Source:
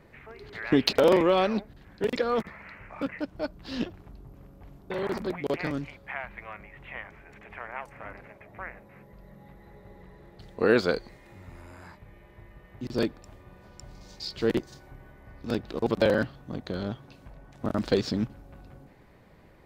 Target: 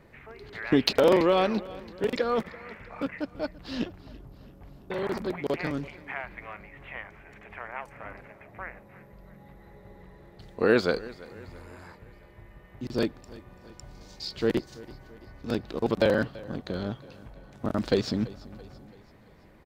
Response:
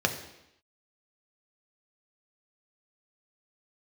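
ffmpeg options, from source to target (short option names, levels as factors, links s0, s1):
-af "aecho=1:1:335|670|1005|1340:0.1|0.051|0.026|0.0133"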